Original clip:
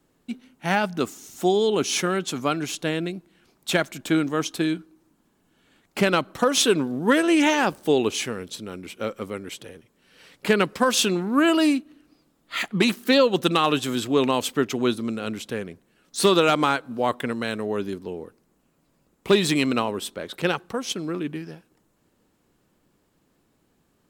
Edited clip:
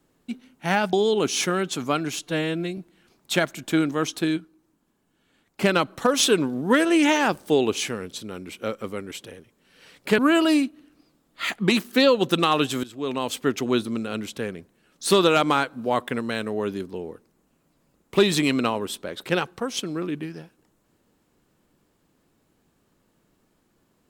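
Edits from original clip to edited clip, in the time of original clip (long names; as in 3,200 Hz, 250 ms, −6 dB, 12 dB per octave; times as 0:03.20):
0:00.93–0:01.49: remove
0:02.78–0:03.15: time-stretch 1.5×
0:04.75–0:06.00: clip gain −4.5 dB
0:10.56–0:11.31: remove
0:13.96–0:14.66: fade in linear, from −19.5 dB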